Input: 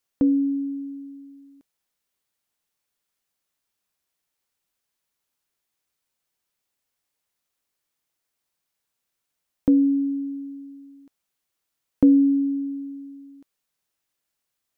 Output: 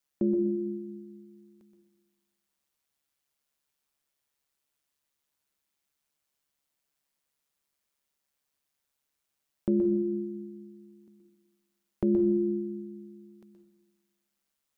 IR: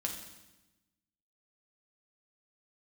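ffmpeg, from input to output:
-filter_complex "[0:a]aeval=exprs='val(0)*sin(2*PI*71*n/s)':channel_layout=same,alimiter=limit=-17dB:level=0:latency=1:release=370,asplit=2[link_01][link_02];[1:a]atrim=start_sample=2205,adelay=123[link_03];[link_02][link_03]afir=irnorm=-1:irlink=0,volume=-7dB[link_04];[link_01][link_04]amix=inputs=2:normalize=0"

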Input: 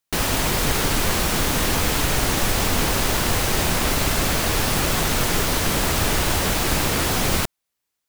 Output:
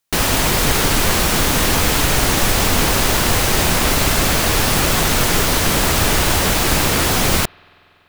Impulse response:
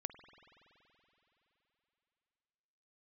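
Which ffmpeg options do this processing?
-filter_complex "[0:a]asplit=2[link_01][link_02];[1:a]atrim=start_sample=2205,lowshelf=frequency=460:gain=-11.5[link_03];[link_02][link_03]afir=irnorm=-1:irlink=0,volume=-11dB[link_04];[link_01][link_04]amix=inputs=2:normalize=0,volume=4dB"

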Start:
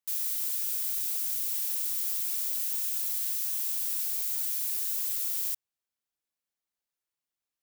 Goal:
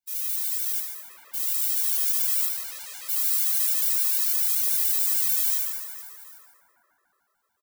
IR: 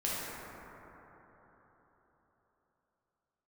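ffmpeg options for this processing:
-filter_complex "[0:a]flanger=delay=1.5:depth=5.6:regen=54:speed=1.2:shape=triangular,aecho=1:1:50|130|258|462.8|790.5:0.631|0.398|0.251|0.158|0.1,dynaudnorm=framelen=630:gausssize=5:maxgain=4dB,asettb=1/sr,asplit=3[link_01][link_02][link_03];[link_01]atrim=end=0.794[link_04];[link_02]atrim=start=0.79:end=1.34,asetpts=PTS-STARTPTS,afade=type=in:duration=0.004:curve=qsin,afade=type=out:start_time=0.546:duration=0.004:curve=qsin,lowpass=1400[link_05];[link_03]atrim=start=1.336[link_06];[link_04][link_05]acrossfade=duration=0.004:curve1=hsin:curve2=qsin[link_07];[link_07][link_06]acrossfade=duration=0.004:curve1=qsin:curve2=hsin,asettb=1/sr,asplit=3[link_08][link_09][link_10];[link_08]atrim=end=2.454[link_11];[link_09]atrim=start=2.45:end=3.09,asetpts=PTS-STARTPTS,afade=type=in:duration=0.004:curve=qsin,afade=type=out:start_time=0.636:duration=0.004:curve=qsin,aemphasis=mode=reproduction:type=75kf[link_12];[link_10]atrim=start=3.086[link_13];[link_11][link_12]acrossfade=duration=0.004:curve1=hsin:curve2=qsin[link_14];[link_14][link_13]acrossfade=duration=0.004:curve1=qsin:curve2=hsin[link_15];[1:a]atrim=start_sample=2205[link_16];[link_15][link_16]afir=irnorm=-1:irlink=0,asettb=1/sr,asplit=3[link_17][link_18][link_19];[link_17]atrim=end=4.314[link_20];[link_18]atrim=start=4.31:end=5.12,asetpts=PTS-STARTPTS,afade=type=in:duration=0.004:curve=qsin,afade=type=out:start_time=0.806:duration=0.004:curve=qsin,asubboost=boost=10:cutoff=150[link_21];[link_19]atrim=start=5.116[link_22];[link_20][link_21]acrossfade=duration=0.004:curve1=hsin:curve2=qsin[link_23];[link_23][link_22]acrossfade=duration=0.004:curve1=qsin:curve2=hsin,afftfilt=real='re*gt(sin(2*PI*6.8*pts/sr)*(1-2*mod(floor(b*sr/1024/340),2)),0)':imag='im*gt(sin(2*PI*6.8*pts/sr)*(1-2*mod(floor(b*sr/1024/340),2)),0)':win_size=1024:overlap=0.75,volume=6dB"

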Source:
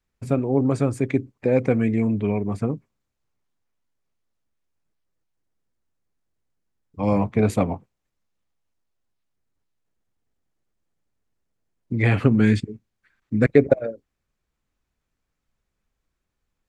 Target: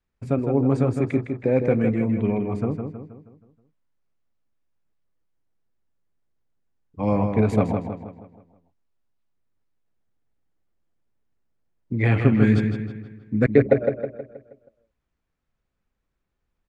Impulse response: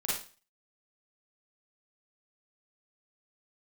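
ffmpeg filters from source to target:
-filter_complex "[0:a]aemphasis=mode=reproduction:type=50kf,asplit=2[link_01][link_02];[link_02]adelay=159,lowpass=frequency=4600:poles=1,volume=-6dB,asplit=2[link_03][link_04];[link_04]adelay=159,lowpass=frequency=4600:poles=1,volume=0.47,asplit=2[link_05][link_06];[link_06]adelay=159,lowpass=frequency=4600:poles=1,volume=0.47,asplit=2[link_07][link_08];[link_08]adelay=159,lowpass=frequency=4600:poles=1,volume=0.47,asplit=2[link_09][link_10];[link_10]adelay=159,lowpass=frequency=4600:poles=1,volume=0.47,asplit=2[link_11][link_12];[link_12]adelay=159,lowpass=frequency=4600:poles=1,volume=0.47[link_13];[link_01][link_03][link_05][link_07][link_09][link_11][link_13]amix=inputs=7:normalize=0,volume=-1dB"

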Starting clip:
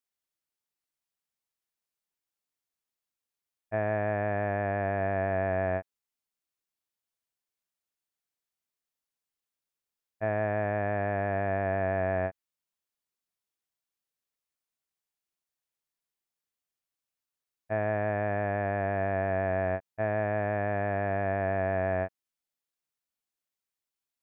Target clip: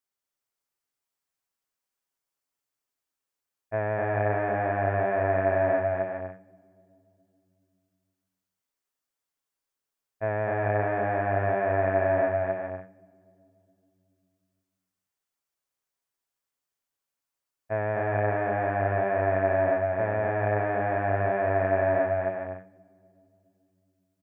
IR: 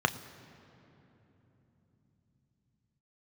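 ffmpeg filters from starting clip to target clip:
-filter_complex "[0:a]aecho=1:1:7.3:0.35,aecho=1:1:250|400|490|544|576.4:0.631|0.398|0.251|0.158|0.1,asplit=2[link_01][link_02];[1:a]atrim=start_sample=2205,asetrate=57330,aresample=44100[link_03];[link_02][link_03]afir=irnorm=-1:irlink=0,volume=-19.5dB[link_04];[link_01][link_04]amix=inputs=2:normalize=0"

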